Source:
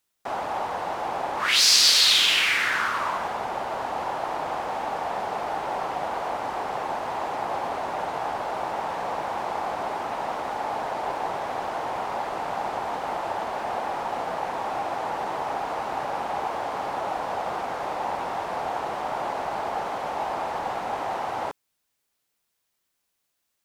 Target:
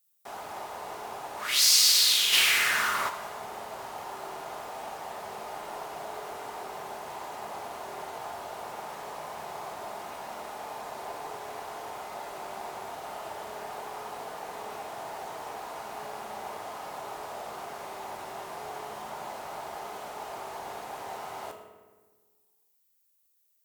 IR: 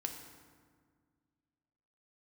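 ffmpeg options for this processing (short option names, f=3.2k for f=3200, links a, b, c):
-filter_complex "[0:a]aemphasis=mode=production:type=75fm[a];[1:a]atrim=start_sample=2205,asetrate=61740,aresample=44100[b];[a][b]afir=irnorm=-1:irlink=0,asplit=3[c][d][e];[c]afade=t=out:st=2.32:d=0.02[f];[d]acontrast=81,afade=t=in:st=2.32:d=0.02,afade=t=out:st=3.08:d=0.02[g];[e]afade=t=in:st=3.08:d=0.02[h];[f][g][h]amix=inputs=3:normalize=0,volume=-7dB"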